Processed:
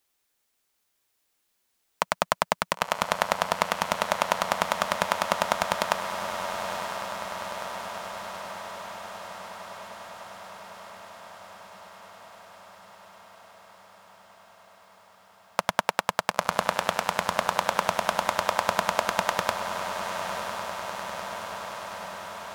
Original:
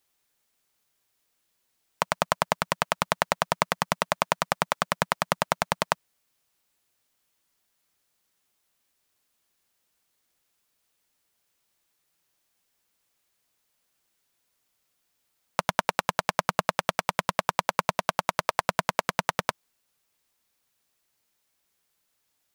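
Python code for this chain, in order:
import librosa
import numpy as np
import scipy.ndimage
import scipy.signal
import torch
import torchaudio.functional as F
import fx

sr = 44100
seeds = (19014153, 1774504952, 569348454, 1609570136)

y = fx.peak_eq(x, sr, hz=140.0, db=-11.5, octaves=0.39)
y = fx.echo_diffused(y, sr, ms=980, feedback_pct=72, wet_db=-6.5)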